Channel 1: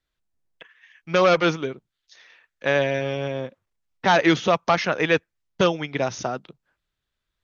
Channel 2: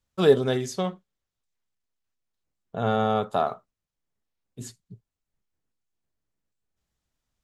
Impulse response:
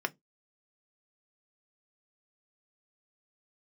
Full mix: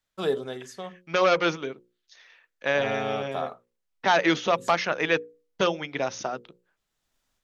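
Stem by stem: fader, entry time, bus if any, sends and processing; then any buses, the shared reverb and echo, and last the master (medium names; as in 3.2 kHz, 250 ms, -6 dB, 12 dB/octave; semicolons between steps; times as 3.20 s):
-2.5 dB, 0.00 s, no send, none
-1.0 dB, 0.00 s, no send, level rider gain up to 9 dB; auto duck -13 dB, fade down 0.55 s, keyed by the first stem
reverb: none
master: peaking EQ 65 Hz -10 dB 2.9 oct; hum notches 60/120/180/240/300/360/420/480/540 Hz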